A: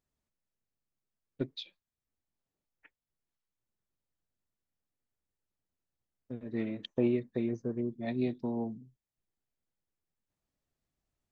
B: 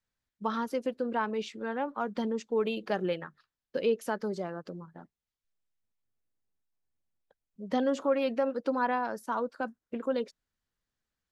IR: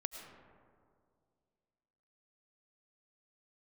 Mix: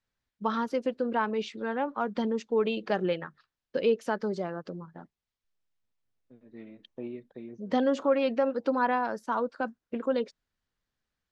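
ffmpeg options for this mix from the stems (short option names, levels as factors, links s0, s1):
-filter_complex "[0:a]highpass=150,volume=0.316[s0];[1:a]volume=1.33,asplit=2[s1][s2];[s2]apad=whole_len=499114[s3];[s0][s3]sidechaincompress=threshold=0.00447:ratio=5:attack=11:release=1490[s4];[s4][s1]amix=inputs=2:normalize=0,lowpass=5900"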